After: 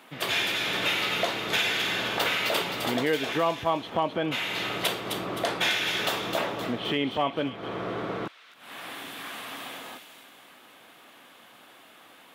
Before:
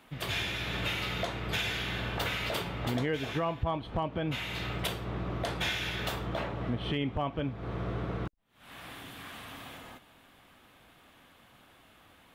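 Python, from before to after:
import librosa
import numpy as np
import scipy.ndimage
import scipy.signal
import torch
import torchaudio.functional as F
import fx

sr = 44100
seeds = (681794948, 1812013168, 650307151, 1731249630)

p1 = scipy.signal.sosfilt(scipy.signal.butter(2, 270.0, 'highpass', fs=sr, output='sos'), x)
p2 = p1 + fx.echo_wet_highpass(p1, sr, ms=260, feedback_pct=43, hz=2900.0, wet_db=-4.5, dry=0)
y = p2 * librosa.db_to_amplitude(7.0)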